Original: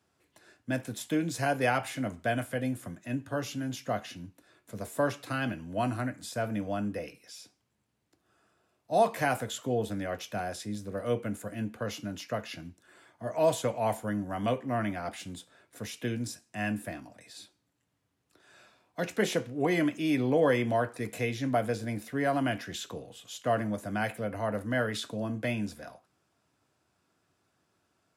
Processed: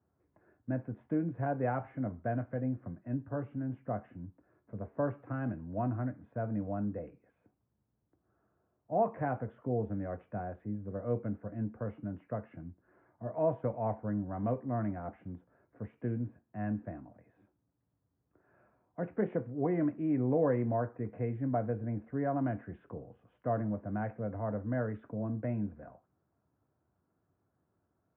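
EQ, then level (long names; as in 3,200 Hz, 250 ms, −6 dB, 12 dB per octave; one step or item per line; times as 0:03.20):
Gaussian smoothing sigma 6.2 samples
low-shelf EQ 130 Hz +8 dB
−4.0 dB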